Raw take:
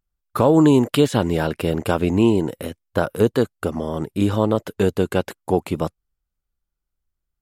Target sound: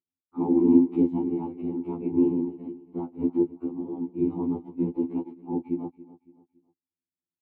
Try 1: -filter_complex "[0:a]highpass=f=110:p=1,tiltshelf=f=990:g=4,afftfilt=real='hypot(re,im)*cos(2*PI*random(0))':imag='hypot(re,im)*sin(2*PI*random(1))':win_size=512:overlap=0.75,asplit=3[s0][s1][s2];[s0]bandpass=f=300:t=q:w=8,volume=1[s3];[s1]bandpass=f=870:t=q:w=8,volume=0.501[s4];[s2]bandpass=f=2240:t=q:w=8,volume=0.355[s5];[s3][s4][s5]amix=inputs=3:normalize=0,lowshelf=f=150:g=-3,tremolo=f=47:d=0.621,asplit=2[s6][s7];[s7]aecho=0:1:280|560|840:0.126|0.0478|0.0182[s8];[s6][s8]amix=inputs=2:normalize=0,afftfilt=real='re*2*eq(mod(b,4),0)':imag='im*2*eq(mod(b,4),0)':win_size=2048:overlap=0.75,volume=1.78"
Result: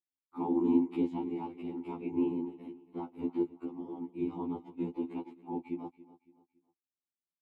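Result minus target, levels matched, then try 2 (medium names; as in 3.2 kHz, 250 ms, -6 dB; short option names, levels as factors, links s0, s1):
1 kHz band +7.0 dB
-filter_complex "[0:a]highpass=f=110:p=1,tiltshelf=f=990:g=15.5,afftfilt=real='hypot(re,im)*cos(2*PI*random(0))':imag='hypot(re,im)*sin(2*PI*random(1))':win_size=512:overlap=0.75,asplit=3[s0][s1][s2];[s0]bandpass=f=300:t=q:w=8,volume=1[s3];[s1]bandpass=f=870:t=q:w=8,volume=0.501[s4];[s2]bandpass=f=2240:t=q:w=8,volume=0.355[s5];[s3][s4][s5]amix=inputs=3:normalize=0,lowshelf=f=150:g=-3,tremolo=f=47:d=0.621,asplit=2[s6][s7];[s7]aecho=0:1:280|560|840:0.126|0.0478|0.0182[s8];[s6][s8]amix=inputs=2:normalize=0,afftfilt=real='re*2*eq(mod(b,4),0)':imag='im*2*eq(mod(b,4),0)':win_size=2048:overlap=0.75,volume=1.78"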